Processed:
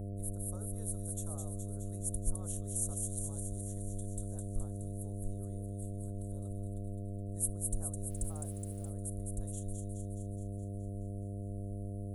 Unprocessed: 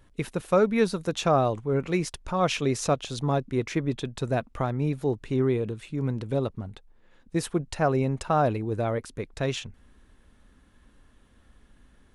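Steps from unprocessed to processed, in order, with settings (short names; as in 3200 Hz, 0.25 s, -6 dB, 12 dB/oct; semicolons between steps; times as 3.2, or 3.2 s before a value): inverse Chebyshev band-stop 110–5300 Hz, stop band 40 dB; thin delay 0.21 s, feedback 66%, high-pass 3400 Hz, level -3.5 dB; buzz 100 Hz, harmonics 7, -49 dBFS -7 dB/oct; 8.1–8.9 requantised 12-bit, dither none; gain +8.5 dB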